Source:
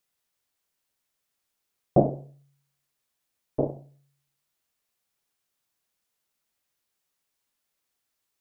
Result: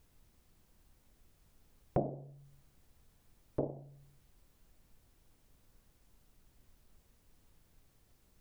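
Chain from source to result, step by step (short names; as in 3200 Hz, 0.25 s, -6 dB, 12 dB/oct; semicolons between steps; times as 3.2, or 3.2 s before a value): added noise brown -70 dBFS; compressor 2.5:1, threshold -44 dBFS, peak gain reduction 20 dB; gain +5 dB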